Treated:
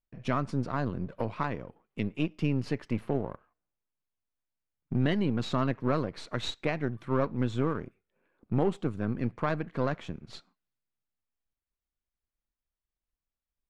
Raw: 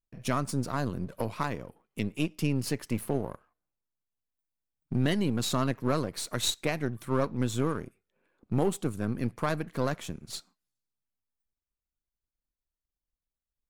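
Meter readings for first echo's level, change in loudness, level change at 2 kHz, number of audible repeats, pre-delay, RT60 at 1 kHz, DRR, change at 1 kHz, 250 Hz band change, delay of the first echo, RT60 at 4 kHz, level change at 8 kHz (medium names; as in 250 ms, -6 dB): no echo, -0.5 dB, -0.5 dB, no echo, no reverb, no reverb, no reverb, 0.0 dB, 0.0 dB, no echo, no reverb, -16.5 dB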